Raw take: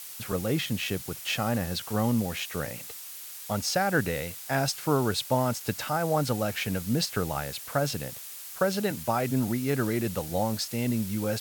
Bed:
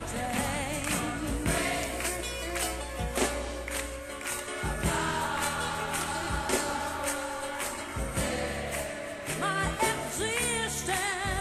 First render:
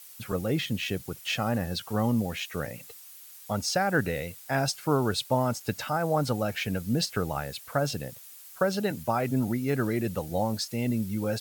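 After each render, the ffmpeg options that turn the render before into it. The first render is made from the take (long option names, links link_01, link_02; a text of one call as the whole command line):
ffmpeg -i in.wav -af "afftdn=noise_reduction=9:noise_floor=-42" out.wav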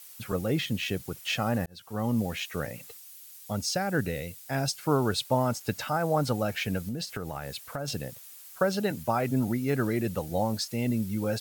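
ffmpeg -i in.wav -filter_complex "[0:a]asettb=1/sr,asplit=3[link_01][link_02][link_03];[link_01]atrim=end=2.974[link_04];[link_02]atrim=start=2.97:end=4.79,asetpts=PTS-STARTPTS,afade=type=in:duration=0.004:curve=qsin,afade=type=out:start_time=1.816:duration=0.004:curve=qsin,equalizer=frequency=1100:width=0.6:gain=-6[link_05];[link_03]atrim=start=4.786[link_06];[link_04][link_05]acrossfade=duration=0.004:curve1=hsin:curve2=qsin[link_07];[link_07][link_06]acrossfade=duration=0.004:curve1=qsin:curve2=hsin,asettb=1/sr,asplit=3[link_08][link_09][link_10];[link_08]atrim=end=6.884[link_11];[link_09]atrim=start=6.88:end=7.88,asetpts=PTS-STARTPTS,afade=type=in:duration=0.004:curve=qsin,afade=type=out:start_time=0.996:duration=0.004:curve=qsin,acompressor=threshold=-30dB:ratio=6:attack=3.2:release=140:knee=1:detection=peak[link_12];[link_10]atrim=start=7.876[link_13];[link_11][link_12]acrossfade=duration=0.004:curve1=hsin:curve2=qsin[link_14];[link_14][link_13]acrossfade=duration=0.004:curve1=qsin:curve2=hsin,asplit=2[link_15][link_16];[link_15]atrim=end=1.66,asetpts=PTS-STARTPTS,afade=type=out:start_time=1.656:duration=0.004:curve=hsin[link_17];[link_16]atrim=start=1.66,asetpts=PTS-STARTPTS,afade=type=in:duration=0.56[link_18];[link_17][link_18]concat=n=2:v=0:a=1" out.wav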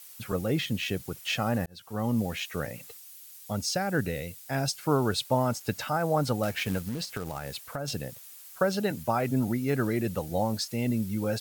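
ffmpeg -i in.wav -filter_complex "[0:a]asettb=1/sr,asplit=3[link_01][link_02][link_03];[link_01]atrim=end=6.434[link_04];[link_02]atrim=start=6.43:end=7.61,asetpts=PTS-STARTPTS,afade=type=in:duration=0.004:curve=qsin,afade=type=out:start_time=1.176:duration=0.004:curve=qsin,acrusher=bits=3:mode=log:mix=0:aa=0.000001[link_05];[link_03]atrim=start=7.606[link_06];[link_04][link_05]acrossfade=duration=0.004:curve1=hsin:curve2=qsin[link_07];[link_07][link_06]acrossfade=duration=0.004:curve1=qsin:curve2=hsin" out.wav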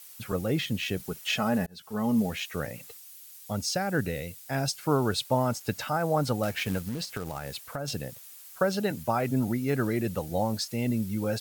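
ffmpeg -i in.wav -filter_complex "[0:a]asettb=1/sr,asplit=3[link_01][link_02][link_03];[link_01]atrim=end=0.974[link_04];[link_02]atrim=start=0.97:end=2.3,asetpts=PTS-STARTPTS,afade=type=in:duration=0.004:curve=qsin,afade=type=out:start_time=1.326:duration=0.004:curve=qsin,aecho=1:1:4.7:0.59,atrim=end_sample=58653[link_05];[link_03]atrim=start=2.296[link_06];[link_04][link_05]acrossfade=duration=0.004:curve1=hsin:curve2=qsin[link_07];[link_07][link_06]acrossfade=duration=0.004:curve1=qsin:curve2=hsin" out.wav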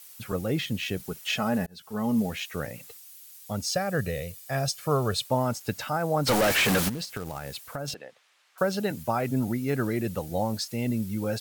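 ffmpeg -i in.wav -filter_complex "[0:a]asettb=1/sr,asplit=3[link_01][link_02][link_03];[link_01]atrim=end=3.664[link_04];[link_02]atrim=start=3.66:end=5.27,asetpts=PTS-STARTPTS,afade=type=in:duration=0.004:curve=qsin,afade=type=out:start_time=1.606:duration=0.004:curve=qsin,aecho=1:1:1.7:0.55,atrim=end_sample=71001[link_05];[link_03]atrim=start=5.266[link_06];[link_04][link_05]acrossfade=duration=0.004:curve1=hsin:curve2=qsin[link_07];[link_07][link_06]acrossfade=duration=0.004:curve1=qsin:curve2=hsin,asplit=3[link_08][link_09][link_10];[link_08]afade=type=out:start_time=6.26:duration=0.02[link_11];[link_09]asplit=2[link_12][link_13];[link_13]highpass=frequency=720:poles=1,volume=38dB,asoftclip=type=tanh:threshold=-15.5dB[link_14];[link_12][link_14]amix=inputs=2:normalize=0,lowpass=frequency=6000:poles=1,volume=-6dB,afade=type=in:start_time=6.26:duration=0.02,afade=type=out:start_time=6.88:duration=0.02[link_15];[link_10]afade=type=in:start_time=6.88:duration=0.02[link_16];[link_11][link_15][link_16]amix=inputs=3:normalize=0,asettb=1/sr,asplit=3[link_17][link_18][link_19];[link_17]atrim=end=7.944[link_20];[link_18]atrim=start=7.94:end=8.58,asetpts=PTS-STARTPTS,afade=type=in:duration=0.004:curve=qsin,afade=type=out:start_time=0.636:duration=0.004:curve=qsin,highpass=560,lowpass=2700[link_21];[link_19]atrim=start=8.576[link_22];[link_20][link_21]acrossfade=duration=0.004:curve1=hsin:curve2=qsin[link_23];[link_23][link_22]acrossfade=duration=0.004:curve1=qsin:curve2=hsin" out.wav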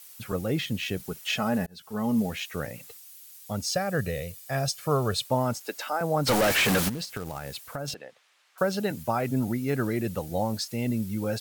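ffmpeg -i in.wav -filter_complex "[0:a]asettb=1/sr,asplit=3[link_01][link_02][link_03];[link_01]atrim=end=5.614[link_04];[link_02]atrim=start=5.61:end=6.01,asetpts=PTS-STARTPTS,afade=type=in:duration=0.004:curve=qsin,afade=type=out:start_time=0.396:duration=0.004:curve=qsin,highpass=frequency=320:width=0.5412,highpass=frequency=320:width=1.3066[link_05];[link_03]atrim=start=6.006[link_06];[link_04][link_05]acrossfade=duration=0.004:curve1=hsin:curve2=qsin[link_07];[link_07][link_06]acrossfade=duration=0.004:curve1=qsin:curve2=hsin" out.wav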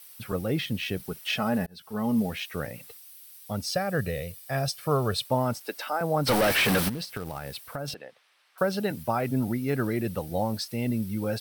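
ffmpeg -i in.wav -af "equalizer=frequency=6900:width_type=o:width=0.24:gain=-12" out.wav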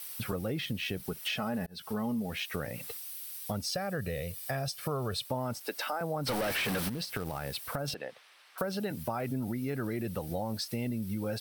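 ffmpeg -i in.wav -filter_complex "[0:a]asplit=2[link_01][link_02];[link_02]alimiter=limit=-23.5dB:level=0:latency=1:release=23,volume=0.5dB[link_03];[link_01][link_03]amix=inputs=2:normalize=0,acompressor=threshold=-33dB:ratio=4" out.wav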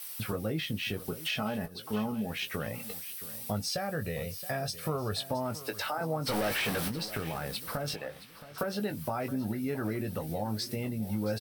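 ffmpeg -i in.wav -filter_complex "[0:a]asplit=2[link_01][link_02];[link_02]adelay=19,volume=-7.5dB[link_03];[link_01][link_03]amix=inputs=2:normalize=0,aecho=1:1:671|1342|2013:0.168|0.0638|0.0242" out.wav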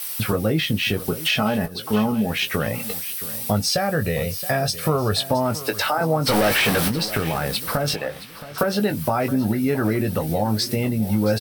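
ffmpeg -i in.wav -af "volume=12dB" out.wav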